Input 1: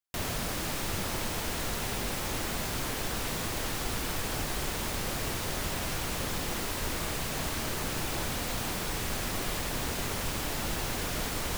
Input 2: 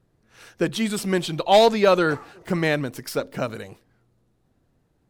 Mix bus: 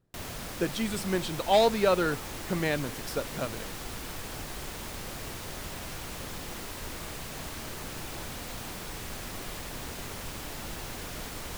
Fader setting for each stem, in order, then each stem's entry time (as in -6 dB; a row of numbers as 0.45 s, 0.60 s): -6.0 dB, -7.0 dB; 0.00 s, 0.00 s